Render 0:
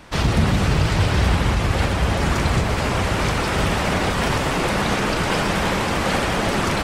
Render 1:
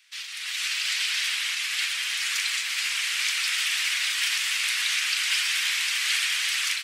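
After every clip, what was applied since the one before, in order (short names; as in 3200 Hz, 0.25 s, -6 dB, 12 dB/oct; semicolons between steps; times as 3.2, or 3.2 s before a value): inverse Chebyshev high-pass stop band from 360 Hz, stop band 80 dB; AGC gain up to 12 dB; gain -7.5 dB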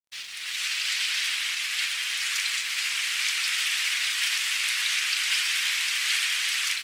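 crossover distortion -50.5 dBFS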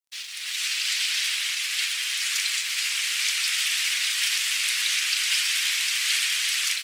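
HPF 150 Hz 12 dB/oct; high shelf 2300 Hz +9 dB; gain -4.5 dB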